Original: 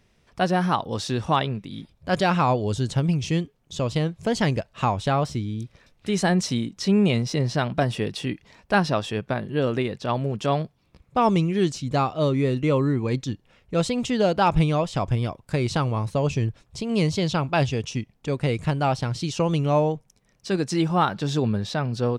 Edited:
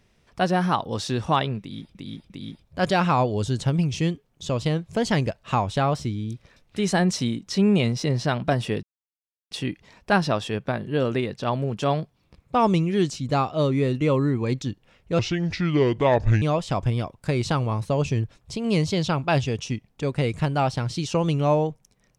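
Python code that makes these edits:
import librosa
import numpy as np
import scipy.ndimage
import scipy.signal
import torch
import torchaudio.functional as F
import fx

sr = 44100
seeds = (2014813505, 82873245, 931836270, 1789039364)

y = fx.edit(x, sr, fx.repeat(start_s=1.6, length_s=0.35, count=3),
    fx.insert_silence(at_s=8.13, length_s=0.68),
    fx.speed_span(start_s=13.81, length_s=0.86, speed=0.7), tone=tone)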